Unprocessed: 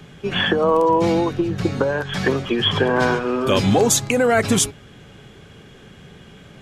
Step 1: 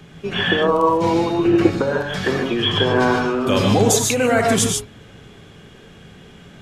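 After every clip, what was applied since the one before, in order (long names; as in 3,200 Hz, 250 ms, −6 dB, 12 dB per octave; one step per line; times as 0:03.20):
reverb whose tail is shaped and stops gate 170 ms rising, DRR 1.5 dB
gain on a spectral selection 0:01.44–0:01.70, 200–3,100 Hz +8 dB
level −1.5 dB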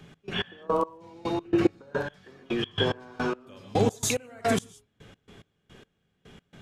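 gate pattern "x.x..x..." 108 BPM −24 dB
level −7 dB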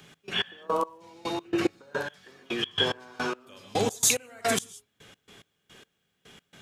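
spectral tilt +2.5 dB per octave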